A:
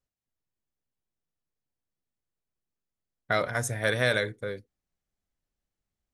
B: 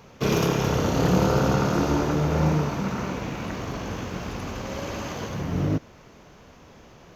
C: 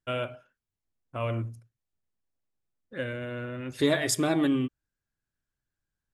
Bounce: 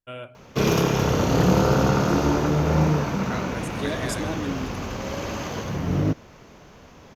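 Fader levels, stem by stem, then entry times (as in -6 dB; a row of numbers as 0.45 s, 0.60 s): -10.0 dB, +2.0 dB, -6.0 dB; 0.00 s, 0.35 s, 0.00 s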